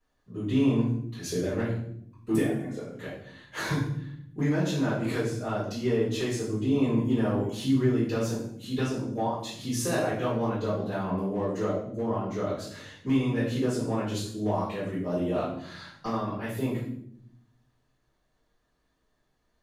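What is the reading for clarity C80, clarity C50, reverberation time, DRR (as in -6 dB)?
6.5 dB, 3.0 dB, 0.70 s, -12.0 dB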